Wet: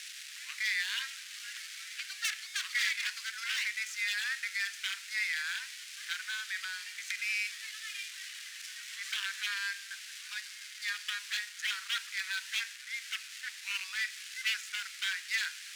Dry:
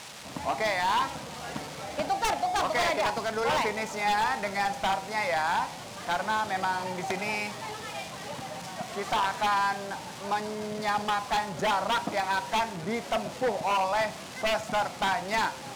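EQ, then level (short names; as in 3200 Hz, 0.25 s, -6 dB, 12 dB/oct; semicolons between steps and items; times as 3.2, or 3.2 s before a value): steep high-pass 1600 Hz 48 dB/oct; 0.0 dB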